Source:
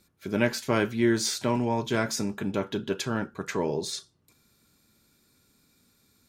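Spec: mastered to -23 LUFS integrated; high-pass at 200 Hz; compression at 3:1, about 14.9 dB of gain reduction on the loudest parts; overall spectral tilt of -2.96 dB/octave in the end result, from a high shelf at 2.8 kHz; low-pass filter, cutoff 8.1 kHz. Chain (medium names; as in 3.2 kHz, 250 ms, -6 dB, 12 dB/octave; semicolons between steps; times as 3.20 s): high-pass 200 Hz; low-pass 8.1 kHz; treble shelf 2.8 kHz +4 dB; compression 3:1, threshold -40 dBFS; trim +17 dB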